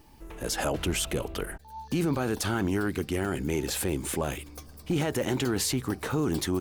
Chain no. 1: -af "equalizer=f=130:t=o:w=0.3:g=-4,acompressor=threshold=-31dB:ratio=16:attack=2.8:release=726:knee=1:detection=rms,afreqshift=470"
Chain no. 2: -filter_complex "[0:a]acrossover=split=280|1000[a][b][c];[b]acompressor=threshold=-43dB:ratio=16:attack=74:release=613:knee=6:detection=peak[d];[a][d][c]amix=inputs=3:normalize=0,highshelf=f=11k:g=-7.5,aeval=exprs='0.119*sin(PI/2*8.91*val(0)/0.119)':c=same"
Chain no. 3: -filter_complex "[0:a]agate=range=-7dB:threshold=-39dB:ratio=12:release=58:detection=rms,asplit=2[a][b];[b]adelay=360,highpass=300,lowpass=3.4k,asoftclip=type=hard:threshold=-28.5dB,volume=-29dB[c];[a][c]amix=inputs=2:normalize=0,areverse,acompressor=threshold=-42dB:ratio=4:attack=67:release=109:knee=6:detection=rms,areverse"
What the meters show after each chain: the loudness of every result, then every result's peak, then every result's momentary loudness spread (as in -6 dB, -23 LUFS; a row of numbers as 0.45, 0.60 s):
-39.0, -21.0, -40.5 LUFS; -25.5, -18.5, -26.5 dBFS; 6, 4, 6 LU